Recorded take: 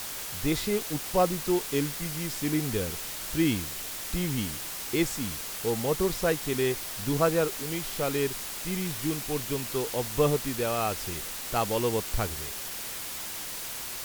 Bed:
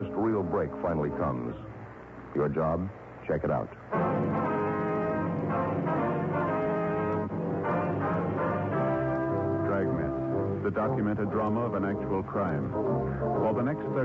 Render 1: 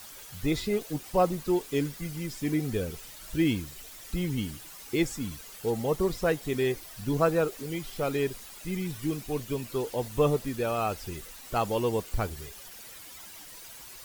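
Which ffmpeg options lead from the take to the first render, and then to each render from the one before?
-af "afftdn=nr=12:nf=-37"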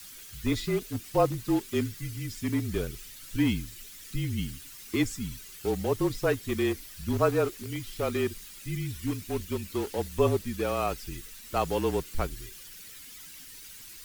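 -filter_complex "[0:a]acrossover=split=450|1300[s0][s1][s2];[s1]aeval=exprs='val(0)*gte(abs(val(0)),0.0119)':c=same[s3];[s0][s3][s2]amix=inputs=3:normalize=0,afreqshift=-35"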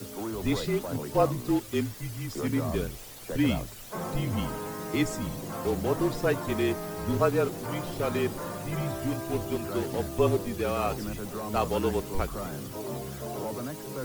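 -filter_complex "[1:a]volume=0.422[s0];[0:a][s0]amix=inputs=2:normalize=0"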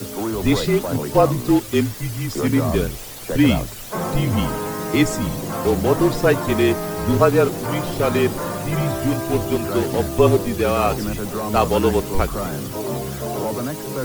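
-af "volume=3.16,alimiter=limit=0.708:level=0:latency=1"

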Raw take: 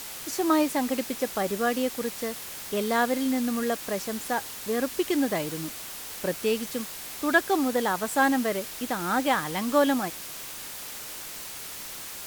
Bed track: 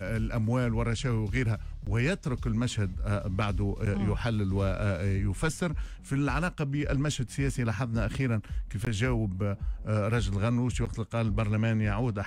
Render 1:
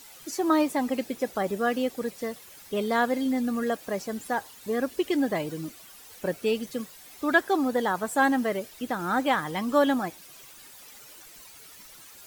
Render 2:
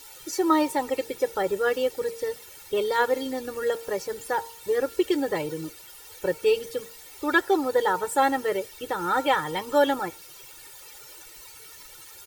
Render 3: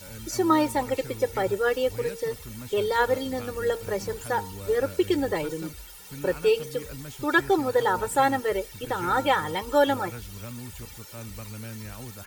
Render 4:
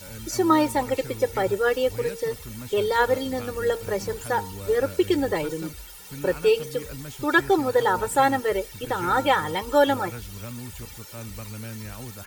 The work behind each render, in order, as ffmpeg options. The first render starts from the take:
-af "afftdn=nr=13:nf=-39"
-af "aecho=1:1:2.2:0.89,bandreject=f=230.1:t=h:w=4,bandreject=f=460.2:t=h:w=4,bandreject=f=690.3:t=h:w=4,bandreject=f=920.4:t=h:w=4,bandreject=f=1150.5:t=h:w=4,bandreject=f=1380.6:t=h:w=4"
-filter_complex "[1:a]volume=0.251[s0];[0:a][s0]amix=inputs=2:normalize=0"
-af "volume=1.26"

